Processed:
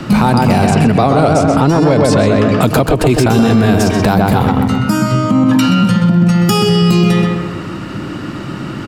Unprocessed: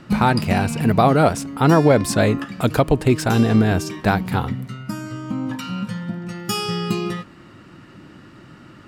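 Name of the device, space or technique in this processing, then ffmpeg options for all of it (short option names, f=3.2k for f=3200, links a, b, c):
mastering chain: -filter_complex "[0:a]asettb=1/sr,asplit=3[a][b][c];[a]atrim=end=0.674[d];[b]atrim=start=0.67:end=2.63,asetpts=PTS-STARTPTS,afade=t=in:d=0.004:c=qsin,afade=t=out:st=1.956:d=0.004:c=qsin,lowpass=7.5k[e];[c]atrim=start=2.626[f];[d][e]acrossfade=d=0.004:c1=hsin:c2=qsin[g];[g][f]acrossfade=d=0.004:c1=qsin:c2=hsin,equalizer=f=1.8k:t=o:w=0.58:g=-3.5,asplit=2[h][i];[i]adelay=127,lowpass=f=2.5k:p=1,volume=-4dB,asplit=2[j][k];[k]adelay=127,lowpass=f=2.5k:p=1,volume=0.42,asplit=2[l][m];[m]adelay=127,lowpass=f=2.5k:p=1,volume=0.42,asplit=2[n][o];[o]adelay=127,lowpass=f=2.5k:p=1,volume=0.42,asplit=2[p][q];[q]adelay=127,lowpass=f=2.5k:p=1,volume=0.42[r];[h][j][l][n][p][r]amix=inputs=6:normalize=0,acrossover=split=130|1100|4300[s][t][u][v];[s]acompressor=threshold=-30dB:ratio=4[w];[t]acompressor=threshold=-18dB:ratio=4[x];[u]acompressor=threshold=-33dB:ratio=4[y];[v]acompressor=threshold=-36dB:ratio=4[z];[w][x][y][z]amix=inputs=4:normalize=0,acompressor=threshold=-30dB:ratio=1.5,asoftclip=type=tanh:threshold=-16dB,alimiter=level_in=21dB:limit=-1dB:release=50:level=0:latency=1,volume=-2dB"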